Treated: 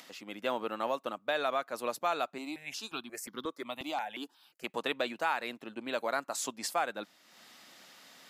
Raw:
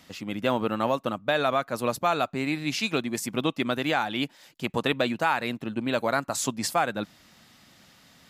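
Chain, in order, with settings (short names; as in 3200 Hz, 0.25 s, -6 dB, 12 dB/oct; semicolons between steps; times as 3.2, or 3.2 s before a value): HPF 350 Hz 12 dB/oct; upward compressor, threshold -40 dBFS; 2.38–4.64 step phaser 5.6 Hz 460–2500 Hz; gain -6.5 dB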